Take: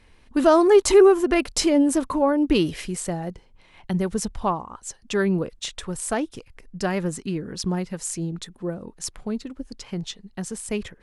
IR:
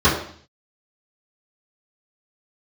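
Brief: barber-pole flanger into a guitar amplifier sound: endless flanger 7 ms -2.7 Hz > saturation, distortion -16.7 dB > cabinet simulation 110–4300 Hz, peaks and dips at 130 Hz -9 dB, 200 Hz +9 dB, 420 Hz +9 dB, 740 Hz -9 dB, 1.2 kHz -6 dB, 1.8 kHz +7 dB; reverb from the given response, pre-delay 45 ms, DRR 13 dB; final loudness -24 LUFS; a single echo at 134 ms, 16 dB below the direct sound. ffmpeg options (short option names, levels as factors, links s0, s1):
-filter_complex "[0:a]aecho=1:1:134:0.158,asplit=2[s0][s1];[1:a]atrim=start_sample=2205,adelay=45[s2];[s1][s2]afir=irnorm=-1:irlink=0,volume=0.0168[s3];[s0][s3]amix=inputs=2:normalize=0,asplit=2[s4][s5];[s5]adelay=7,afreqshift=-2.7[s6];[s4][s6]amix=inputs=2:normalize=1,asoftclip=threshold=0.251,highpass=110,equalizer=f=130:t=q:w=4:g=-9,equalizer=f=200:t=q:w=4:g=9,equalizer=f=420:t=q:w=4:g=9,equalizer=f=740:t=q:w=4:g=-9,equalizer=f=1200:t=q:w=4:g=-6,equalizer=f=1800:t=q:w=4:g=7,lowpass=f=4300:w=0.5412,lowpass=f=4300:w=1.3066,volume=0.794"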